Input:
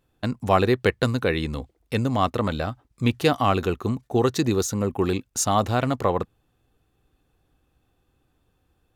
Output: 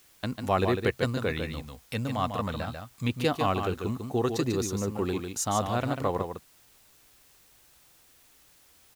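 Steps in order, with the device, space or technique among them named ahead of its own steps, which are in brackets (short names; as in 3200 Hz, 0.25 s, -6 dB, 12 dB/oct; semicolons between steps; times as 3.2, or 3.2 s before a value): 1.3–3.09 bell 360 Hz -8.5 dB 0.58 oct; echo 0.147 s -6.5 dB; noise-reduction cassette on a plain deck (mismatched tape noise reduction encoder only; wow and flutter; white noise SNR 29 dB); gain -6.5 dB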